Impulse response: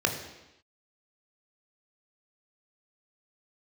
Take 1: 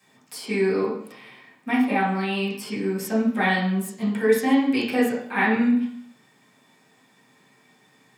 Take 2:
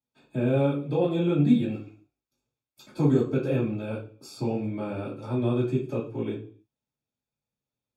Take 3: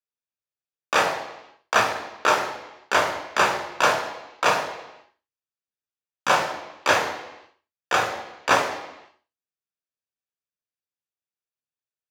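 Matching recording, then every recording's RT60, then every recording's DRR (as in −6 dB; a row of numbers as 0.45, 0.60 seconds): 3; 0.65 s, 0.45 s, non-exponential decay; −9.0, −12.0, 3.0 decibels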